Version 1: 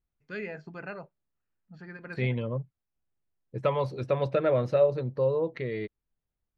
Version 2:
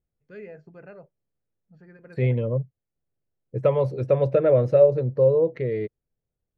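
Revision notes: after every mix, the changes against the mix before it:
first voice −9.0 dB
master: add octave-band graphic EQ 125/500/1,000/4,000 Hz +7/+9/−4/−7 dB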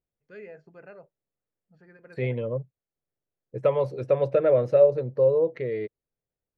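master: add low-shelf EQ 230 Hz −10.5 dB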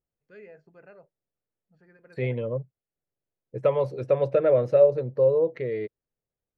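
first voice −4.0 dB

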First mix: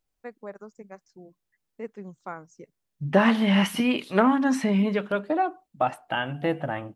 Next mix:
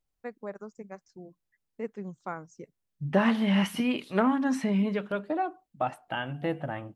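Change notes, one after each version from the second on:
second voice −5.5 dB
master: add low-shelf EQ 190 Hz +4.5 dB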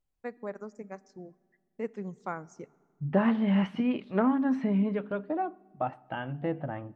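second voice: add head-to-tape spacing loss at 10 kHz 34 dB
reverb: on, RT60 1.7 s

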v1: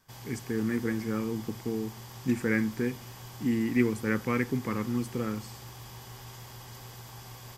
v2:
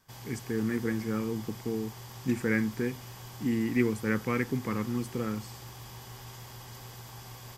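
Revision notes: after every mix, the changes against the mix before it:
reverb: off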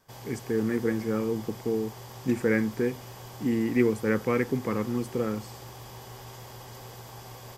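master: add parametric band 530 Hz +8 dB 1.4 octaves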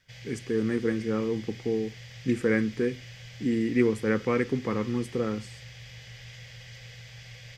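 background: add drawn EQ curve 160 Hz 0 dB, 340 Hz −28 dB, 500 Hz −6 dB, 990 Hz −22 dB, 2,000 Hz +9 dB, 6,200 Hz −2 dB, 11,000 Hz −20 dB

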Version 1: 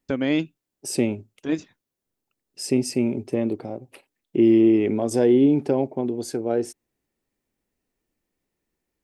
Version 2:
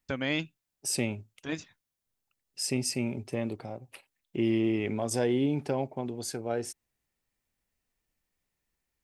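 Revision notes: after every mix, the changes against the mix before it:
master: add parametric band 330 Hz −12 dB 1.8 octaves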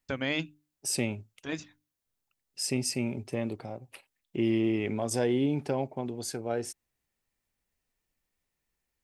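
first voice: add mains-hum notches 50/100/150/200/250/300 Hz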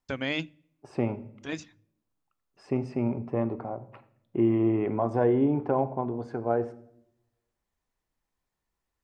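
second voice: add low-pass with resonance 1,100 Hz, resonance Q 2.3
reverb: on, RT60 0.70 s

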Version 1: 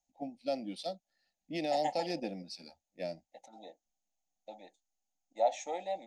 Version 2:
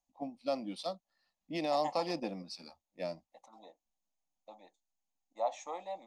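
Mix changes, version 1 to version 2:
second voice −5.5 dB
master: remove Butterworth band-reject 1,100 Hz, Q 1.8

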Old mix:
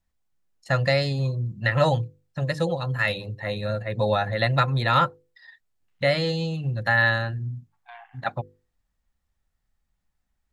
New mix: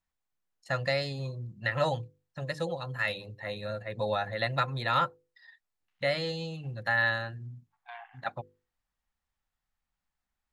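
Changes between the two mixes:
first voice −6.0 dB
master: add low-shelf EQ 240 Hz −7 dB

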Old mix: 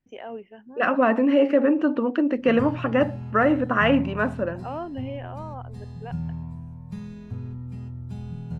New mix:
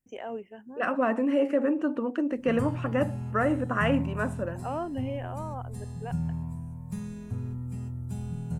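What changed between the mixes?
second voice −6.0 dB
master: add high shelf with overshoot 6,100 Hz +12.5 dB, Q 1.5

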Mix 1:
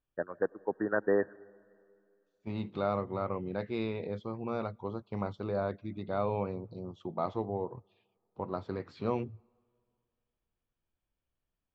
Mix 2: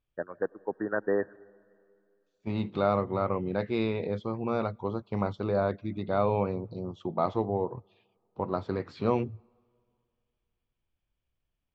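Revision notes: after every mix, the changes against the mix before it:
second voice +5.5 dB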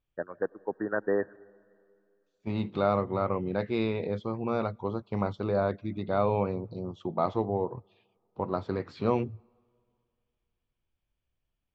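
nothing changed

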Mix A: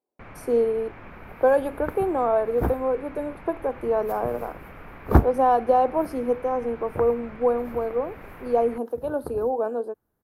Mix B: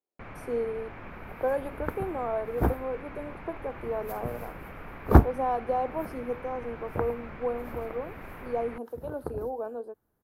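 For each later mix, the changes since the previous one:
speech −9.0 dB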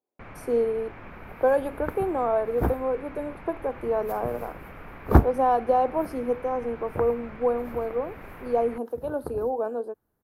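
speech +6.5 dB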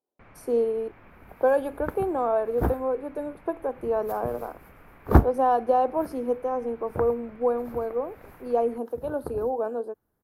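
first sound −9.0 dB

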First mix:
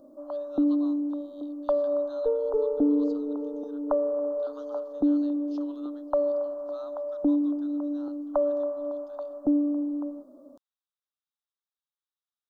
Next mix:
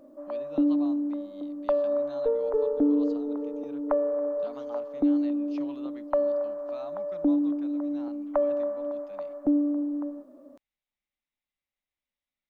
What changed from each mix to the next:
speech: remove high-pass with resonance 1,400 Hz, resonance Q 1.6
master: remove Butterworth band-reject 2,200 Hz, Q 0.96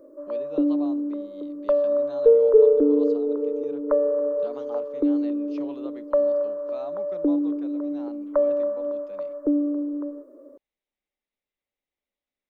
background: add phaser with its sweep stopped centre 760 Hz, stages 6
master: add parametric band 430 Hz +12 dB 1.1 octaves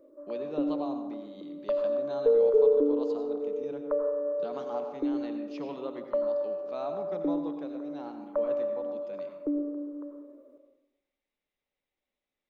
background −10.5 dB
reverb: on, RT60 0.90 s

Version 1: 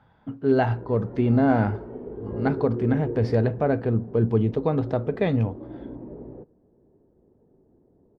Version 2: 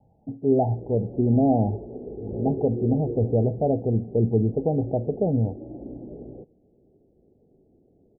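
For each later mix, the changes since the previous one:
master: add Butterworth low-pass 820 Hz 96 dB per octave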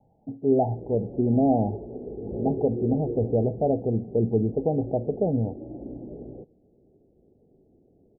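speech: add parametric band 69 Hz −6 dB 2.2 octaves

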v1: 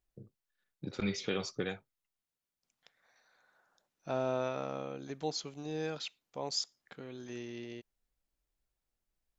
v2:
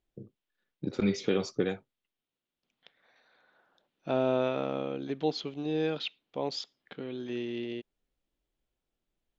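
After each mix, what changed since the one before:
second voice: add low-pass with resonance 3,300 Hz, resonance Q 2.6
master: add parametric band 310 Hz +9 dB 2.2 octaves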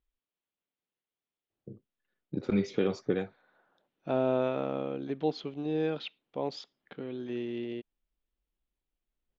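first voice: entry +1.50 s
master: add high-shelf EQ 3,600 Hz −11.5 dB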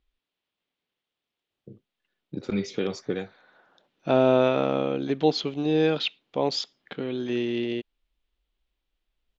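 second voice +8.0 dB
master: add high-shelf EQ 3,600 Hz +11.5 dB

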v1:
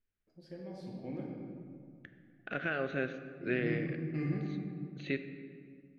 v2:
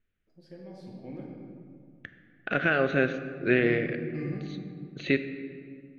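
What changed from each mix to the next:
second voice +10.0 dB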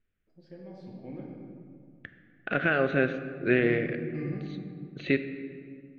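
master: add high-frequency loss of the air 120 metres

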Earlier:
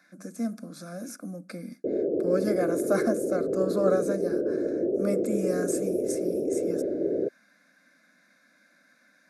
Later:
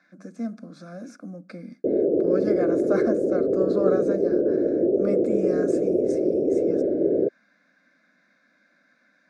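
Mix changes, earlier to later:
background +6.0 dB
master: add high-frequency loss of the air 130 metres

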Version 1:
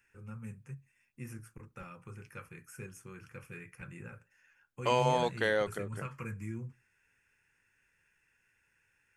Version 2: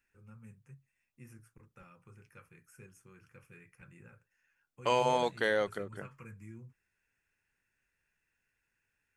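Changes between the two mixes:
first voice −8.5 dB
reverb: off

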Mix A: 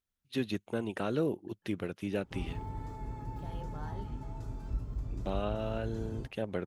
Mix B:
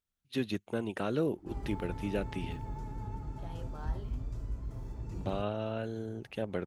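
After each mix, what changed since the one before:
background: entry −0.85 s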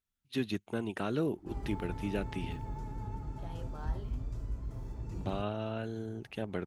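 first voice: add parametric band 530 Hz −6 dB 0.33 octaves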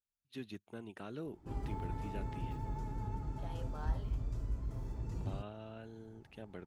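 first voice −12.0 dB
second voice: add linear-phase brick-wall high-pass 410 Hz

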